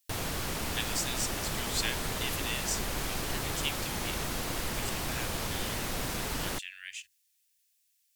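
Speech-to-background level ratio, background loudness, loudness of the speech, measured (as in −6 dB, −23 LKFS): −4.0 dB, −33.5 LKFS, −37.5 LKFS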